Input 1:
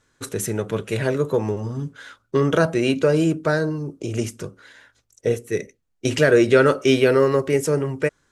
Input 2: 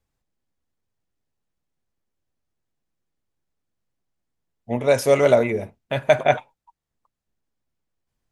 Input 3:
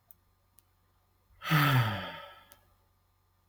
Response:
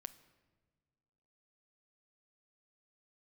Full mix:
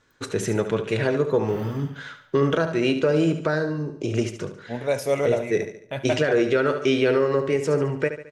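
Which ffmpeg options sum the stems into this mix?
-filter_complex "[0:a]lowpass=5.2k,lowshelf=f=120:g=-5.5,volume=2.5dB,asplit=2[a][b];[b]volume=-10.5dB[c];[1:a]volume=-9dB,asplit=3[d][e][f];[e]volume=-4dB[g];[f]volume=-12.5dB[h];[2:a]volume=-16.5dB[i];[3:a]atrim=start_sample=2205[j];[g][j]afir=irnorm=-1:irlink=0[k];[c][h]amix=inputs=2:normalize=0,aecho=0:1:72|144|216|288|360|432:1|0.42|0.176|0.0741|0.0311|0.0131[l];[a][d][i][k][l]amix=inputs=5:normalize=0,alimiter=limit=-11dB:level=0:latency=1:release=448"

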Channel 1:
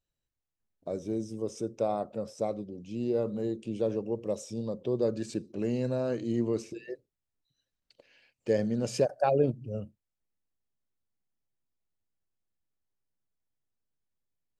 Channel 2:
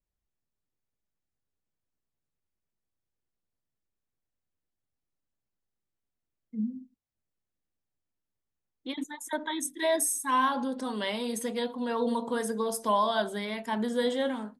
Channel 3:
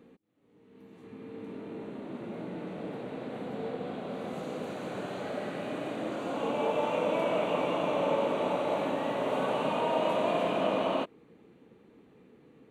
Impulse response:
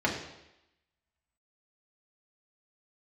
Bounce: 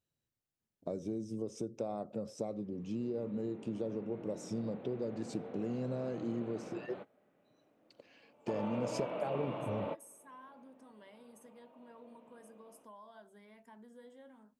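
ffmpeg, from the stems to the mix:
-filter_complex "[0:a]highpass=130,lowshelf=f=310:g=9.5,volume=-2dB,asplit=2[a][b];[1:a]equalizer=f=3.9k:w=1.5:g=-10,acompressor=threshold=-40dB:ratio=2,volume=-19dB[c];[2:a]adynamicsmooth=sensitivity=7:basefreq=4.2k,equalizer=f=6.7k:t=o:w=0.92:g=-14.5,adelay=1800,volume=-10.5dB[d];[b]apad=whole_len=639771[e];[d][e]sidechaingate=range=-25dB:threshold=-45dB:ratio=16:detection=peak[f];[a][c]amix=inputs=2:normalize=0,acompressor=threshold=-35dB:ratio=6,volume=0dB[g];[f][g]amix=inputs=2:normalize=0"

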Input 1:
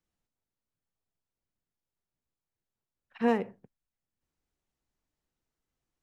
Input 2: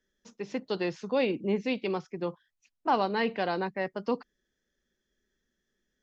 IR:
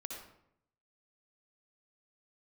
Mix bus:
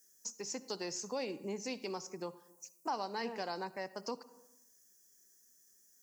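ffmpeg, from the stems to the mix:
-filter_complex "[0:a]volume=-12dB[a];[1:a]aexciter=amount=11.2:drive=9.7:freq=5.5k,highpass=f=200:p=1,volume=-3.5dB,asplit=2[b][c];[c]volume=-12.5dB[d];[2:a]atrim=start_sample=2205[e];[d][e]afir=irnorm=-1:irlink=0[f];[a][b][f]amix=inputs=3:normalize=0,equalizer=f=910:t=o:w=0.59:g=4.5,acompressor=threshold=-43dB:ratio=2"

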